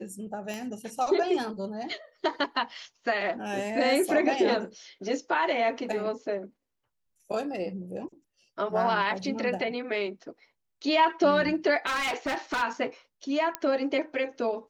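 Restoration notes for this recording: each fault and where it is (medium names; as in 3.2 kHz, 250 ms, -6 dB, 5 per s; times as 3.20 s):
0.54 s: pop -22 dBFS
11.86–12.63 s: clipped -25.5 dBFS
13.55 s: pop -12 dBFS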